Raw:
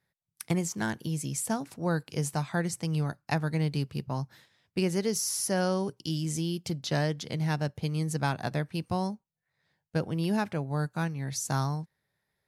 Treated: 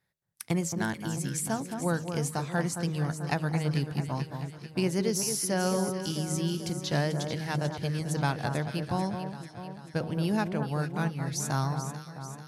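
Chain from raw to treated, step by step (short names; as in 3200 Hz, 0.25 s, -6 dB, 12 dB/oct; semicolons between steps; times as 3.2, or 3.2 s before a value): de-hum 78.75 Hz, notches 8; on a send: echo with dull and thin repeats by turns 0.22 s, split 1500 Hz, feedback 75%, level -7 dB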